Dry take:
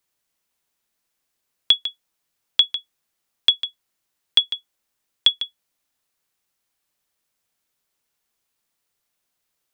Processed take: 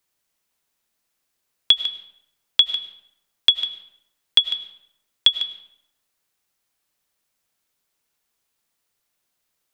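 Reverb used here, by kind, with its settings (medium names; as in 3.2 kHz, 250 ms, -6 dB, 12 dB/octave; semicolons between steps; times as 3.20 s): algorithmic reverb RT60 0.81 s, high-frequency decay 0.7×, pre-delay 60 ms, DRR 12 dB; trim +1 dB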